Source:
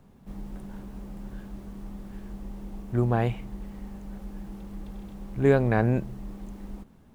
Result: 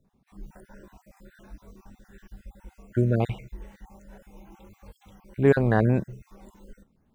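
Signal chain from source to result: random spectral dropouts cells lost 36%; spectral noise reduction 13 dB; gain +2 dB

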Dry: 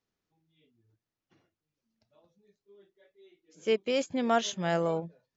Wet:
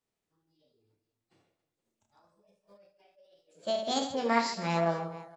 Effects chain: reverse bouncing-ball echo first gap 30 ms, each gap 1.6×, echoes 5; formant shift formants +6 st; gain -3.5 dB

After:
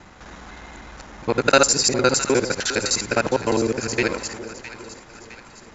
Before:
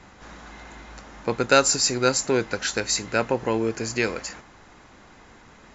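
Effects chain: local time reversal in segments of 51 ms; split-band echo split 870 Hz, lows 0.406 s, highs 0.661 s, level -13.5 dB; gain +3 dB

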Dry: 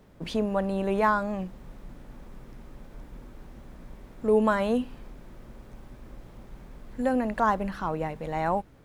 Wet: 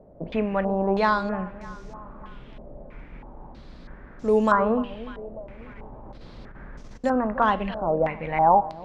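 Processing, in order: de-hum 119.4 Hz, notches 27; 5.61–7.04 negative-ratio compressor -43 dBFS, ratio -0.5; echo with dull and thin repeats by turns 0.298 s, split 890 Hz, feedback 57%, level -14 dB; stepped low-pass 3.1 Hz 630–6000 Hz; gain +1.5 dB

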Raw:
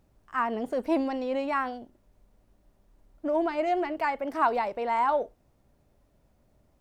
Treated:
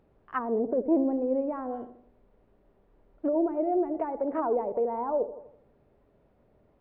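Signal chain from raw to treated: bell 430 Hz +7.5 dB 0.43 oct; on a send: darkening echo 82 ms, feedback 50%, low-pass 930 Hz, level -12 dB; on the sum: treble ducked by the level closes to 500 Hz, closed at -24.5 dBFS; Gaussian blur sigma 2.8 samples; low shelf 120 Hz -7.5 dB; gain +3 dB

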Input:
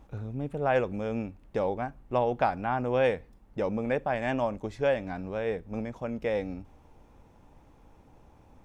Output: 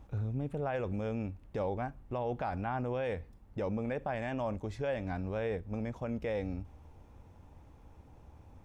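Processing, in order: bell 81 Hz +10 dB 1 oct; limiter -23.5 dBFS, peak gain reduction 10.5 dB; gain -2.5 dB

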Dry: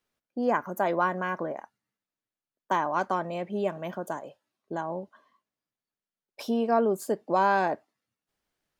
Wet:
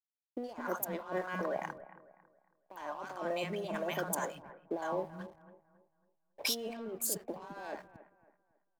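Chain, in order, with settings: tilt +2.5 dB/oct; negative-ratio compressor -37 dBFS, ratio -1; three bands offset in time mids, highs, lows 60/210 ms, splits 220/860 Hz; backlash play -49.5 dBFS; on a send: analogue delay 0.275 s, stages 4096, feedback 34%, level -16 dB

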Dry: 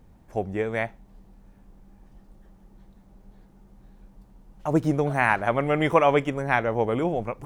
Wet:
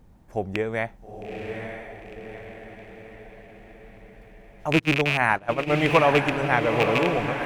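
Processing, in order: rattling part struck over -28 dBFS, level -10 dBFS; diffused feedback echo 0.903 s, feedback 55%, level -6 dB; 4.79–5.7 gate -21 dBFS, range -17 dB

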